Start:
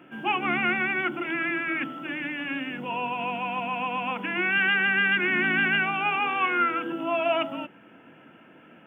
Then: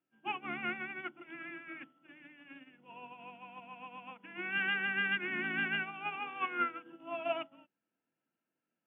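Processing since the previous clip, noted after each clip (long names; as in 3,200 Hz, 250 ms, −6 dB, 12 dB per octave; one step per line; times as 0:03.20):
expander for the loud parts 2.5 to 1, over −41 dBFS
level −7.5 dB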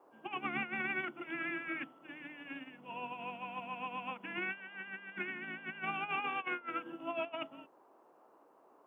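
compressor whose output falls as the input rises −41 dBFS, ratio −0.5
noise in a band 270–1,100 Hz −67 dBFS
level +2.5 dB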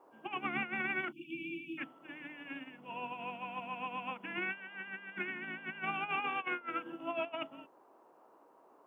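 steady tone 950 Hz −72 dBFS
time-frequency box erased 0:01.12–0:01.78, 360–2,300 Hz
level +1 dB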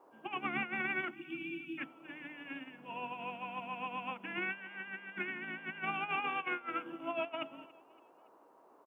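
repeating echo 282 ms, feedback 47%, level −22 dB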